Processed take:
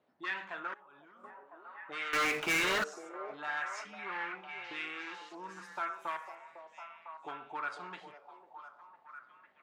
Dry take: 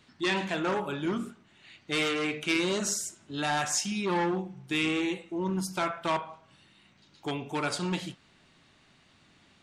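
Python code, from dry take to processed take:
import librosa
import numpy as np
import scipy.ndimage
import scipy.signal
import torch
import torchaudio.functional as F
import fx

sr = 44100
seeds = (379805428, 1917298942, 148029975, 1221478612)

y = fx.auto_wah(x, sr, base_hz=590.0, top_hz=1600.0, q=2.4, full_db=-24.5, direction='up')
y = fx.leveller(y, sr, passes=5, at=(2.13, 2.84))
y = fx.echo_stepped(y, sr, ms=502, hz=540.0, octaves=0.7, feedback_pct=70, wet_db=-5.5)
y = fx.level_steps(y, sr, step_db=19, at=(0.67, 1.24))
y = F.gain(torch.from_numpy(y), -2.0).numpy()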